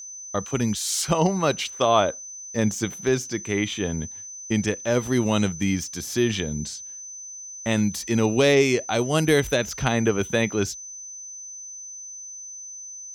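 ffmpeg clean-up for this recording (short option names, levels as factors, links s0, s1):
-af "bandreject=f=6100:w=30"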